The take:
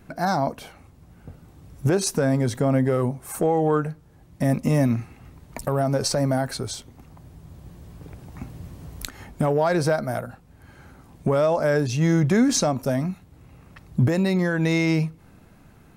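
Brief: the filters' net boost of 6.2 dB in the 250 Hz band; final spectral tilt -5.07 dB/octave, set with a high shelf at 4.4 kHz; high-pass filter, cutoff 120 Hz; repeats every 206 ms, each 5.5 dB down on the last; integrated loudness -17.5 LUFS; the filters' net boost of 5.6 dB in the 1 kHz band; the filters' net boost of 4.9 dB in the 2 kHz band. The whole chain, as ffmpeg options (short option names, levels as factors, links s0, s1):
-af "highpass=120,equalizer=f=250:t=o:g=8,equalizer=f=1000:t=o:g=6.5,equalizer=f=2000:t=o:g=5,highshelf=f=4400:g=-7.5,aecho=1:1:206|412|618|824|1030|1236|1442:0.531|0.281|0.149|0.079|0.0419|0.0222|0.0118,volume=1.06"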